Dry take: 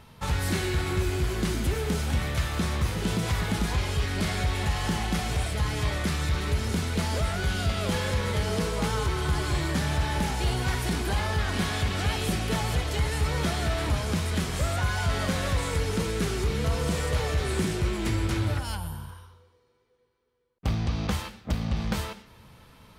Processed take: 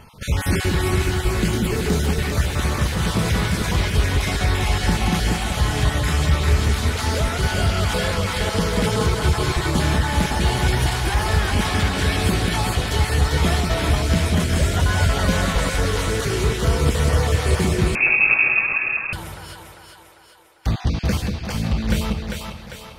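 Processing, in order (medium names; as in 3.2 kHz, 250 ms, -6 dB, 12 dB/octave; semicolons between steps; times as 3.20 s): random holes in the spectrogram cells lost 24%; two-band feedback delay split 450 Hz, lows 187 ms, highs 398 ms, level -3.5 dB; 17.95–19.13 s: frequency inversion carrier 2.6 kHz; trim +6.5 dB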